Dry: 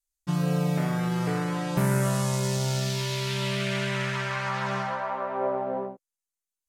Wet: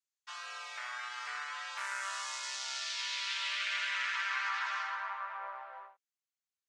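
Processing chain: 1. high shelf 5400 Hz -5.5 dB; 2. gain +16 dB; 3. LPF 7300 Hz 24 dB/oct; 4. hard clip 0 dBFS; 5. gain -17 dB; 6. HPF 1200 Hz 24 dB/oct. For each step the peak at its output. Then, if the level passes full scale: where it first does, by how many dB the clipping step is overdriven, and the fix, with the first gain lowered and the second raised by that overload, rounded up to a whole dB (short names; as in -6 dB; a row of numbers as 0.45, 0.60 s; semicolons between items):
-13.0, +3.0, +3.0, 0.0, -17.0, -22.0 dBFS; step 2, 3.0 dB; step 2 +13 dB, step 5 -14 dB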